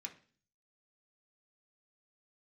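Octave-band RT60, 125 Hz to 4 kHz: 0.75 s, 0.60 s, 0.45 s, 0.40 s, 0.45 s, 0.50 s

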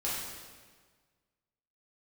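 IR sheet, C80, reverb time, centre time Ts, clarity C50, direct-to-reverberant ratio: 2.0 dB, 1.5 s, 89 ms, -0.5 dB, -8.0 dB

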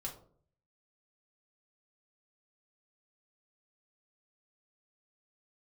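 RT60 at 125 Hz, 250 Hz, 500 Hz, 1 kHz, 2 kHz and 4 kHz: 0.85 s, 0.65 s, 0.60 s, 0.45 s, 0.30 s, 0.25 s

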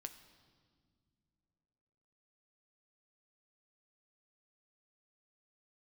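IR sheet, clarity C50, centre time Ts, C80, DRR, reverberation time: 11.5 dB, 12 ms, 13.0 dB, 7.5 dB, no single decay rate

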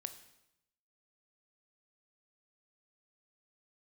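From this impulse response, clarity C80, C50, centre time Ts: 14.0 dB, 12.0 dB, 9 ms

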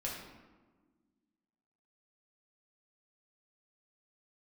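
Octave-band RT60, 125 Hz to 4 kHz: 1.7 s, 2.3 s, 1.5 s, 1.3 s, 1.0 s, 0.75 s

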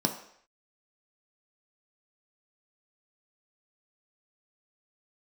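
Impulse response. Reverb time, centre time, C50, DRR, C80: 0.65 s, 17 ms, 9.5 dB, 3.0 dB, 12.0 dB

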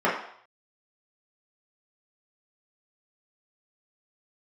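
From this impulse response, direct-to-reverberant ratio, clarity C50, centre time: -8.0 dB, 5.0 dB, 39 ms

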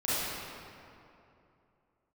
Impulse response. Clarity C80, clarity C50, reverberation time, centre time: -3.0 dB, -7.0 dB, 2.8 s, 193 ms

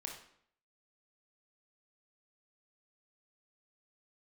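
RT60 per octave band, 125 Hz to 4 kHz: 0.65 s, 0.70 s, 0.65 s, 0.65 s, 0.60 s, 0.55 s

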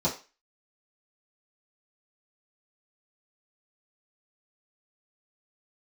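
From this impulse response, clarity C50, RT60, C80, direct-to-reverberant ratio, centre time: 11.0 dB, 0.30 s, 16.5 dB, -9.0 dB, 21 ms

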